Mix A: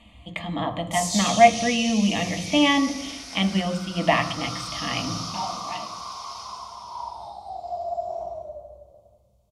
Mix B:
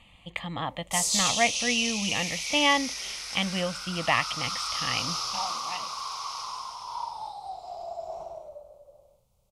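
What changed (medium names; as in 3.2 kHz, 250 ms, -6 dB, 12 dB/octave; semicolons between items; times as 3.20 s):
background +5.0 dB; reverb: off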